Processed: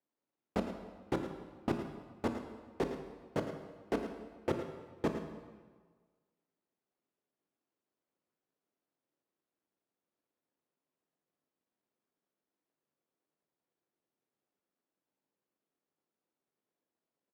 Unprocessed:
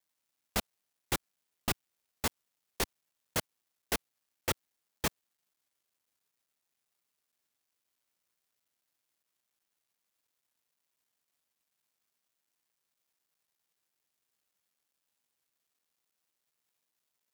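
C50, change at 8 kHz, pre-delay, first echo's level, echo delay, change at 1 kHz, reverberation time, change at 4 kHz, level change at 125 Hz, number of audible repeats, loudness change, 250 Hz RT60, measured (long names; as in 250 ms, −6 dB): 6.0 dB, −21.0 dB, 18 ms, −11.0 dB, 109 ms, −1.5 dB, 1.5 s, −14.0 dB, 0.0 dB, 1, −3.0 dB, 1.5 s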